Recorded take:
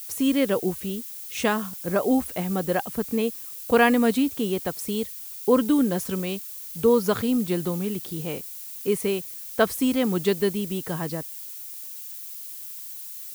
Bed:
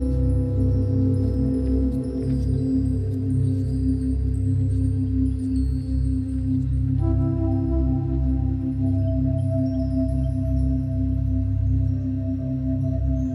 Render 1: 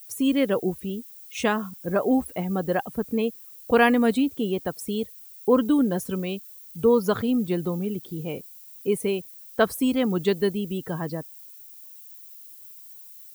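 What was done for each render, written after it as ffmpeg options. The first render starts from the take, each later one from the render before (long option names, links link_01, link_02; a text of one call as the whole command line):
ffmpeg -i in.wav -af "afftdn=noise_reduction=12:noise_floor=-38" out.wav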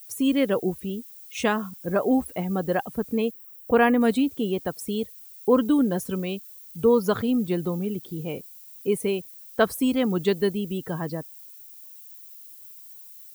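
ffmpeg -i in.wav -filter_complex "[0:a]asettb=1/sr,asplit=3[link_01][link_02][link_03];[link_01]atrim=end=3.314[link_04];[link_02]atrim=start=3.31:end=4.01,asetpts=PTS-STARTPTS,afade=type=in:duration=0.004:curve=qsin,afade=type=out:start_time=0.696:duration=0.004:curve=qsin,equalizer=frequency=5500:width_type=o:width=1.6:gain=-13[link_05];[link_03]atrim=start=4.006[link_06];[link_04][link_05]acrossfade=duration=0.004:curve1=hsin:curve2=qsin[link_07];[link_07][link_06]acrossfade=duration=0.004:curve1=qsin:curve2=hsin" out.wav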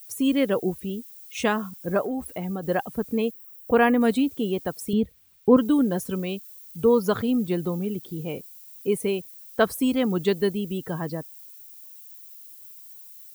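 ffmpeg -i in.wav -filter_complex "[0:a]asettb=1/sr,asplit=3[link_01][link_02][link_03];[link_01]atrim=end=0.804[link_04];[link_02]atrim=start=0.8:end=1.23,asetpts=PTS-STARTPTS,afade=type=in:duration=0.004:curve=qsin,afade=type=out:start_time=0.426:duration=0.004:curve=qsin,equalizer=frequency=1100:width_type=o:width=0.26:gain=-7.5[link_05];[link_03]atrim=start=1.226[link_06];[link_04][link_05]acrossfade=duration=0.004:curve1=hsin:curve2=qsin[link_07];[link_07][link_06]acrossfade=duration=0.004:curve1=qsin:curve2=hsin,asplit=3[link_08][link_09][link_10];[link_08]afade=type=out:start_time=2.01:duration=0.02[link_11];[link_09]acompressor=threshold=-26dB:ratio=5:attack=3.2:release=140:knee=1:detection=peak,afade=type=in:start_time=2.01:duration=0.02,afade=type=out:start_time=2.62:duration=0.02[link_12];[link_10]afade=type=in:start_time=2.62:duration=0.02[link_13];[link_11][link_12][link_13]amix=inputs=3:normalize=0,asettb=1/sr,asplit=3[link_14][link_15][link_16];[link_14]atrim=end=4.934[link_17];[link_15]atrim=start=4.93:end=5.57,asetpts=PTS-STARTPTS,afade=type=in:duration=0.004:curve=qsin,afade=type=out:start_time=0.636:duration=0.004:curve=qsin,bass=frequency=250:gain=12,treble=frequency=4000:gain=-13[link_18];[link_16]atrim=start=5.566[link_19];[link_17][link_18]acrossfade=duration=0.004:curve1=hsin:curve2=qsin[link_20];[link_20][link_19]acrossfade=duration=0.004:curve1=qsin:curve2=hsin" out.wav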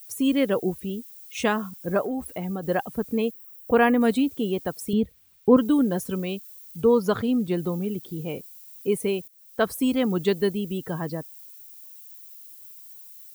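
ffmpeg -i in.wav -filter_complex "[0:a]asettb=1/sr,asplit=3[link_01][link_02][link_03];[link_01]atrim=end=6.814[link_04];[link_02]atrim=start=6.81:end=7.57,asetpts=PTS-STARTPTS,afade=type=in:duration=0.004:curve=qsin,afade=type=out:start_time=0.756:duration=0.004:curve=qsin,highshelf=frequency=10000:gain=-6.5[link_05];[link_03]atrim=start=7.566[link_06];[link_04][link_05]acrossfade=duration=0.004:curve1=hsin:curve2=qsin[link_07];[link_07][link_06]acrossfade=duration=0.004:curve1=qsin:curve2=hsin,asplit=2[link_08][link_09];[link_08]atrim=end=9.28,asetpts=PTS-STARTPTS,afade=type=out:start_time=9.276:duration=0.004:curve=hsin:silence=0.158489[link_10];[link_09]atrim=start=9.28,asetpts=PTS-STARTPTS,afade=type=in:duration=0.68:curve=qsin:silence=0.158489[link_11];[link_10][link_11]concat=n=2:v=0:a=1" out.wav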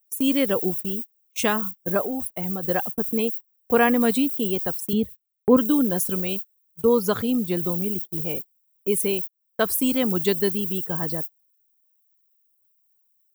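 ffmpeg -i in.wav -af "agate=range=-37dB:threshold=-34dB:ratio=16:detection=peak,aemphasis=mode=production:type=50kf" out.wav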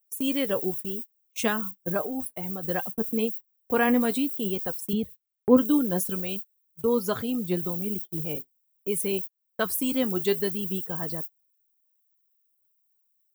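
ffmpeg -i in.wav -af "flanger=delay=3.9:depth=4.5:regen=63:speed=0.64:shape=triangular" out.wav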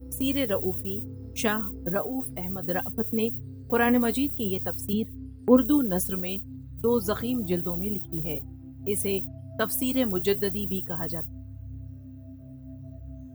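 ffmpeg -i in.wav -i bed.wav -filter_complex "[1:a]volume=-19dB[link_01];[0:a][link_01]amix=inputs=2:normalize=0" out.wav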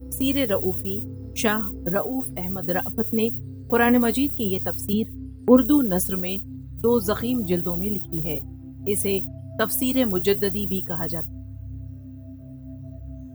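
ffmpeg -i in.wav -af "volume=4dB,alimiter=limit=-3dB:level=0:latency=1" out.wav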